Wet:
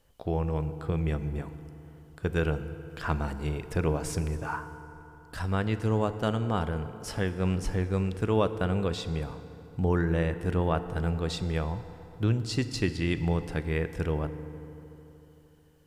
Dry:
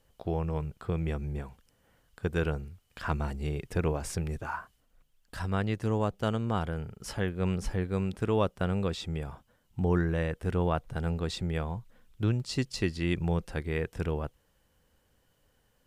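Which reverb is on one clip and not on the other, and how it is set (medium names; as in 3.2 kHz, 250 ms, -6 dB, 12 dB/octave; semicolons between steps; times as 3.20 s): FDN reverb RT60 3.4 s, high-frequency decay 0.55×, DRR 10.5 dB; trim +1.5 dB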